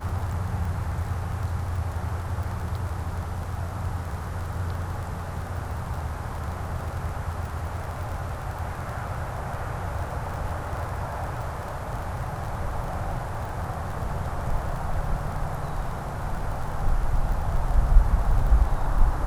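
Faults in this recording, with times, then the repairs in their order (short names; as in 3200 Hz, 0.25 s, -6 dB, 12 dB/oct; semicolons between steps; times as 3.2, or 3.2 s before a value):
crackle 29/s -32 dBFS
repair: de-click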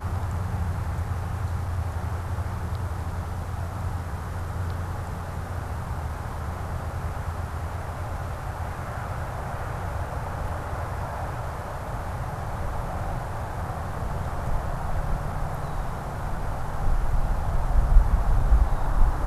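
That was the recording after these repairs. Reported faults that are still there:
none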